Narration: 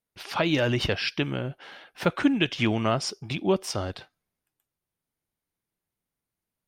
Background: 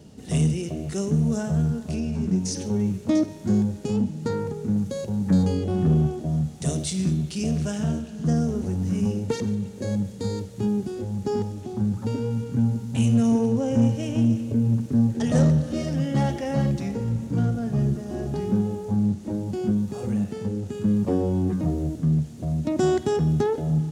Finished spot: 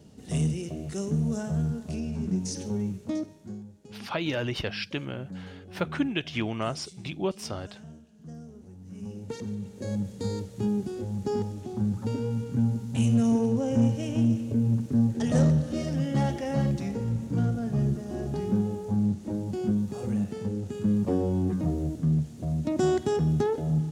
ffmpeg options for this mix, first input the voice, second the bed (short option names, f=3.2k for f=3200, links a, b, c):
-filter_complex "[0:a]adelay=3750,volume=-5.5dB[a];[1:a]volume=13dB,afade=t=out:st=2.69:d=0.91:silence=0.158489,afade=t=in:st=8.84:d=1.39:silence=0.125893[b];[a][b]amix=inputs=2:normalize=0"